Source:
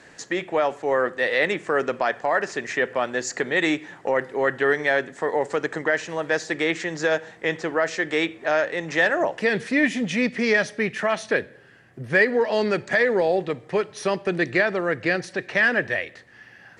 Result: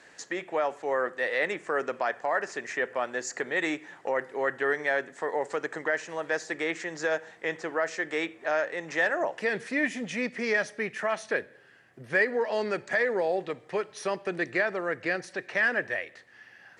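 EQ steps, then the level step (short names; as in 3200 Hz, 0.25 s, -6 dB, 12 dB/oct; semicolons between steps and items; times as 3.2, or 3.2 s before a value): dynamic EQ 3600 Hz, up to -6 dB, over -40 dBFS, Q 1.2; low shelf 260 Hz -11 dB; -4.0 dB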